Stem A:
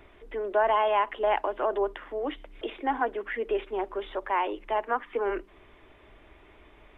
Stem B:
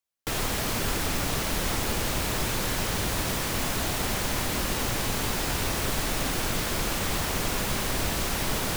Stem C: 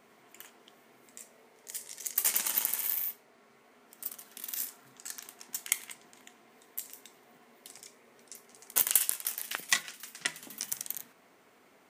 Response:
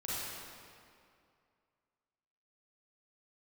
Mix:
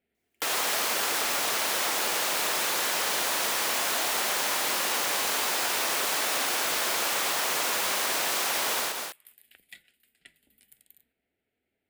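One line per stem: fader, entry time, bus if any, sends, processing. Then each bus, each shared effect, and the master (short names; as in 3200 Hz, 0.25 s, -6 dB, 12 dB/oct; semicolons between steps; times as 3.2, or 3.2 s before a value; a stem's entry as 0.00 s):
-10.5 dB, 2.35 s, no send, no echo send, HPF 1300 Hz
+2.0 dB, 0.15 s, no send, echo send -12.5 dB, HPF 580 Hz 12 dB/oct; AGC gain up to 10 dB
-18.0 dB, 0.00 s, no send, no echo send, octaver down 2 oct, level -6 dB; fixed phaser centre 2600 Hz, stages 4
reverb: off
echo: echo 0.202 s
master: compressor 12:1, threshold -24 dBFS, peak gain reduction 9.5 dB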